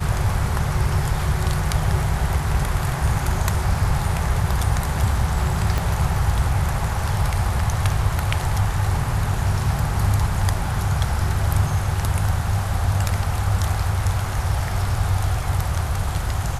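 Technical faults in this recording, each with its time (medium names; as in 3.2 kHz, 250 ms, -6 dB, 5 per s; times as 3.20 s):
5.78 s: pop -9 dBFS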